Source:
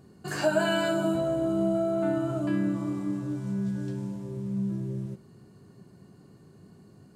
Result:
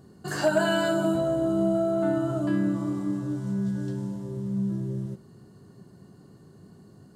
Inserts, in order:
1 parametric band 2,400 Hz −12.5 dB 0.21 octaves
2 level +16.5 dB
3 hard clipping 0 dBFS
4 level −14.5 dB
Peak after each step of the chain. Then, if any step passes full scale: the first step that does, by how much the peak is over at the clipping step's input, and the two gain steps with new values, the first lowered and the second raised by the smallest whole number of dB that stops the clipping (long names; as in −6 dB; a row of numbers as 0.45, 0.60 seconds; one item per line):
−13.5, +3.0, 0.0, −14.5 dBFS
step 2, 3.0 dB
step 2 +13.5 dB, step 4 −11.5 dB